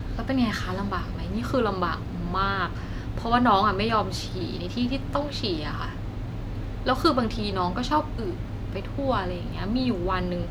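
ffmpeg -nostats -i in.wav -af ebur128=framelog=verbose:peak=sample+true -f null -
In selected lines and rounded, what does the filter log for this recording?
Integrated loudness:
  I:         -26.8 LUFS
  Threshold: -36.8 LUFS
Loudness range:
  LRA:         2.8 LU
  Threshold: -46.6 LUFS
  LRA low:   -27.9 LUFS
  LRA high:  -25.1 LUFS
Sample peak:
  Peak:       -6.7 dBFS
True peak:
  Peak:       -6.6 dBFS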